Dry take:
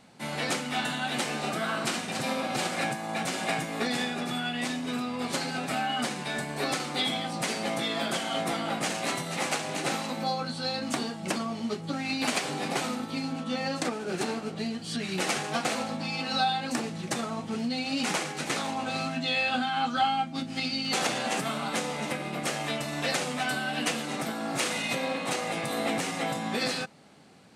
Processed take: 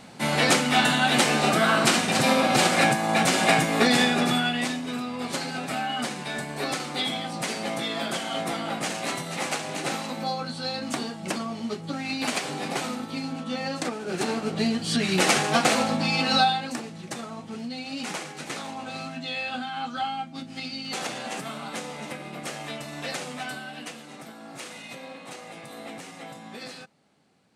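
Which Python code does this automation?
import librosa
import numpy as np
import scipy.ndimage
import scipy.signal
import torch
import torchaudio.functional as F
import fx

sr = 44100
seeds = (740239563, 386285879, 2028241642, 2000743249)

y = fx.gain(x, sr, db=fx.line((4.27, 9.5), (4.86, 0.5), (14.02, 0.5), (14.63, 8.0), (16.34, 8.0), (16.82, -4.0), (23.42, -4.0), (23.94, -10.5)))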